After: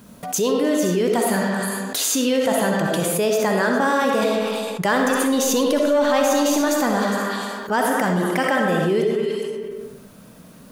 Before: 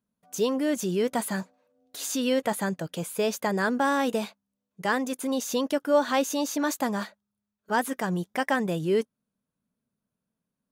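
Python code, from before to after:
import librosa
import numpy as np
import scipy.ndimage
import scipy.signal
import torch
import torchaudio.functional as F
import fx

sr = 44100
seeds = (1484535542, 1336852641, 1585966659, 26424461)

y = fx.echo_stepped(x, sr, ms=102, hz=500.0, octaves=1.4, feedback_pct=70, wet_db=-4)
y = fx.leveller(y, sr, passes=1, at=(4.22, 6.61))
y = fx.rev_freeverb(y, sr, rt60_s=0.87, hf_ratio=0.65, predelay_ms=20, drr_db=2.0)
y = fx.env_flatten(y, sr, amount_pct=70)
y = y * 10.0 ** (-2.5 / 20.0)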